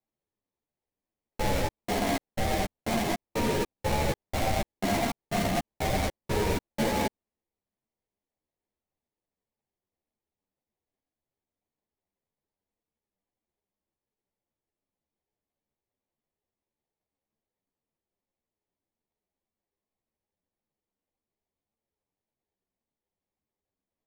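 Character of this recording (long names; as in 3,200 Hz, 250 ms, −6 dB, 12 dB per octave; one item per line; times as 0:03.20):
aliases and images of a low sample rate 1,400 Hz, jitter 20%
a shimmering, thickened sound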